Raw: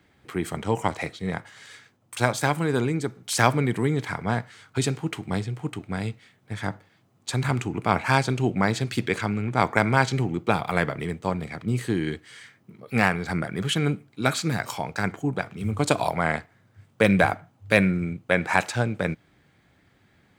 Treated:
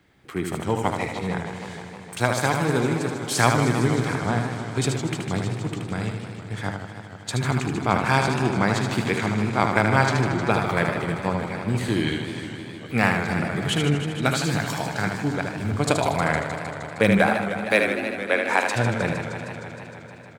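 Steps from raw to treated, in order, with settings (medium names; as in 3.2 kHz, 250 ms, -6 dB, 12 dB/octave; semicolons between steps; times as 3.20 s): 11.73–12.13 s: peaking EQ 3.7 kHz +3 dB -> +12.5 dB 1.5 oct; 17.19–18.67 s: steep high-pass 240 Hz 72 dB/octave; delay 76 ms -5.5 dB; modulated delay 155 ms, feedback 78%, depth 153 cents, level -9.5 dB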